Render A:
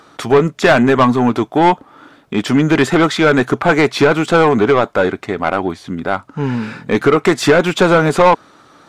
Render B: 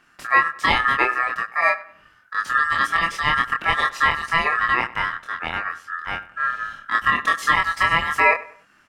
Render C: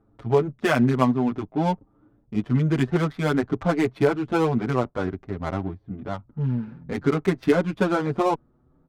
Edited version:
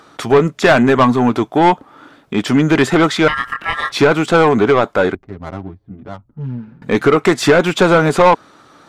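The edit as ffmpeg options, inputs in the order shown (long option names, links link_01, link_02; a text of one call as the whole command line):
ffmpeg -i take0.wav -i take1.wav -i take2.wav -filter_complex "[0:a]asplit=3[link_01][link_02][link_03];[link_01]atrim=end=3.282[link_04];[1:a]atrim=start=3.278:end=3.922[link_05];[link_02]atrim=start=3.918:end=5.152[link_06];[2:a]atrim=start=5.148:end=6.822[link_07];[link_03]atrim=start=6.818[link_08];[link_04][link_05]acrossfade=duration=0.004:curve1=hsin:curve2=hsin[link_09];[link_09][link_06]acrossfade=duration=0.004:curve1=hsin:curve2=hsin[link_10];[link_10][link_07]acrossfade=duration=0.004:curve1=hsin:curve2=hsin[link_11];[link_11][link_08]acrossfade=duration=0.004:curve1=hsin:curve2=hsin" out.wav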